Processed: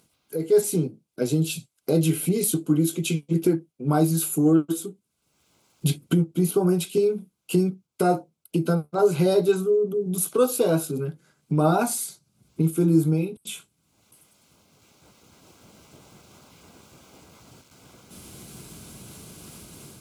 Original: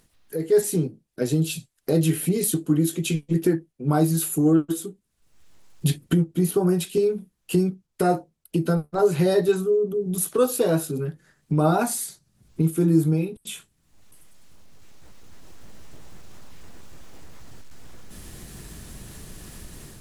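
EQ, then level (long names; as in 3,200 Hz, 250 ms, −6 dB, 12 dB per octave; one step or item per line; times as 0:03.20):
high-pass filter 110 Hz
Butterworth band-reject 1,800 Hz, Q 4.8
0.0 dB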